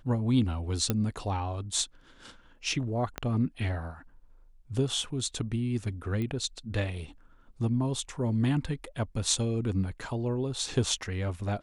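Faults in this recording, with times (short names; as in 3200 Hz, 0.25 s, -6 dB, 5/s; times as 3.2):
0.9 pop -12 dBFS
3.18 pop -17 dBFS
6.22 pop -23 dBFS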